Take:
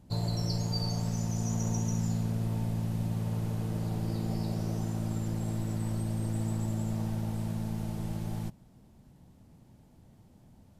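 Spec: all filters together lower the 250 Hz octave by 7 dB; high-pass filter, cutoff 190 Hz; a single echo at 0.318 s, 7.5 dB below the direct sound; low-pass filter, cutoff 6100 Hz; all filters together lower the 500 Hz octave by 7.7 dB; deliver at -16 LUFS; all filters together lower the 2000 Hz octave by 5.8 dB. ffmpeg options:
-af "highpass=190,lowpass=6.1k,equalizer=f=250:t=o:g=-4.5,equalizer=f=500:t=o:g=-8.5,equalizer=f=2k:t=o:g=-7,aecho=1:1:318:0.422,volume=24dB"

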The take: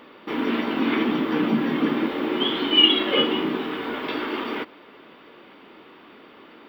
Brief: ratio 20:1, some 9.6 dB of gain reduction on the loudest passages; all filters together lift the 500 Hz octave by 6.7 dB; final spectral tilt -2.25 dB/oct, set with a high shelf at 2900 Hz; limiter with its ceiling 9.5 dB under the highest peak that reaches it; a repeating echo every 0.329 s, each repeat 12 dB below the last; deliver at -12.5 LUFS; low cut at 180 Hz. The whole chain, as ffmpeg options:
-af "highpass=180,equalizer=f=500:t=o:g=9,highshelf=f=2.9k:g=-4,acompressor=threshold=-20dB:ratio=20,alimiter=limit=-21.5dB:level=0:latency=1,aecho=1:1:329|658|987:0.251|0.0628|0.0157,volume=17dB"

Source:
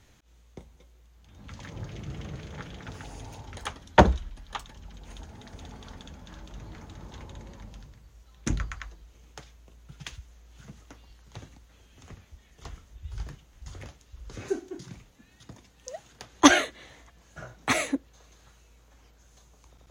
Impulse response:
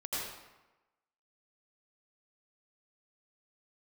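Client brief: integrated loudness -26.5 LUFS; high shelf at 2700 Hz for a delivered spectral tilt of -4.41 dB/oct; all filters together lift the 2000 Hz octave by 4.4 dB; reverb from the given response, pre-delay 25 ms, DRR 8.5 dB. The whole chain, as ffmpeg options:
-filter_complex "[0:a]equalizer=f=2k:t=o:g=7.5,highshelf=f=2.7k:g=-5,asplit=2[a][b];[1:a]atrim=start_sample=2205,adelay=25[c];[b][c]afir=irnorm=-1:irlink=0,volume=-12.5dB[d];[a][d]amix=inputs=2:normalize=0"

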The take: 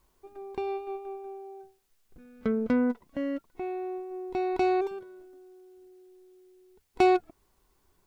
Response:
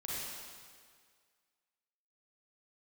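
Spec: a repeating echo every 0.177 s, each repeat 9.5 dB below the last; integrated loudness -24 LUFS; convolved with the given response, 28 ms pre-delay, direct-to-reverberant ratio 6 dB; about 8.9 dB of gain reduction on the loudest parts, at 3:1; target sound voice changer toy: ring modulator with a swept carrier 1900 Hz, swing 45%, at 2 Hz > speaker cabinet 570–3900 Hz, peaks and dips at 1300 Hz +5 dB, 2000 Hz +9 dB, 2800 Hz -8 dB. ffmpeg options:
-filter_complex "[0:a]acompressor=threshold=-29dB:ratio=3,aecho=1:1:177|354|531|708:0.335|0.111|0.0365|0.012,asplit=2[a][b];[1:a]atrim=start_sample=2205,adelay=28[c];[b][c]afir=irnorm=-1:irlink=0,volume=-8dB[d];[a][d]amix=inputs=2:normalize=0,aeval=exprs='val(0)*sin(2*PI*1900*n/s+1900*0.45/2*sin(2*PI*2*n/s))':c=same,highpass=570,equalizer=f=1.3k:t=q:w=4:g=5,equalizer=f=2k:t=q:w=4:g=9,equalizer=f=2.8k:t=q:w=4:g=-8,lowpass=f=3.9k:w=0.5412,lowpass=f=3.9k:w=1.3066,volume=7.5dB"

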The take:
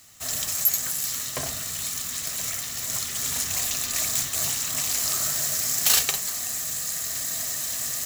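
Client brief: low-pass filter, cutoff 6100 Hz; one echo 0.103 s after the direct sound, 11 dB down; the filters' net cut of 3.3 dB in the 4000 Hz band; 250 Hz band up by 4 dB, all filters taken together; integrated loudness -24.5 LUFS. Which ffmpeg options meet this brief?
-af "lowpass=6.1k,equalizer=f=250:t=o:g=5,equalizer=f=4k:t=o:g=-3,aecho=1:1:103:0.282,volume=6dB"

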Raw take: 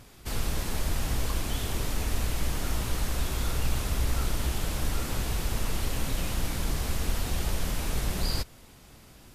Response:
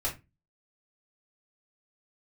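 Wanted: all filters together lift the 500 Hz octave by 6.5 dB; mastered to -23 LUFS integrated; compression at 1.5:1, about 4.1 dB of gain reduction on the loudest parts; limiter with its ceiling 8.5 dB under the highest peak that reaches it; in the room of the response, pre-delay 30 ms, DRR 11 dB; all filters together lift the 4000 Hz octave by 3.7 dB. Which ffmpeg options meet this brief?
-filter_complex "[0:a]equalizer=f=500:t=o:g=8,equalizer=f=4k:t=o:g=4.5,acompressor=threshold=-33dB:ratio=1.5,alimiter=level_in=3dB:limit=-24dB:level=0:latency=1,volume=-3dB,asplit=2[a][b];[1:a]atrim=start_sample=2205,adelay=30[c];[b][c]afir=irnorm=-1:irlink=0,volume=-16.5dB[d];[a][d]amix=inputs=2:normalize=0,volume=14dB"

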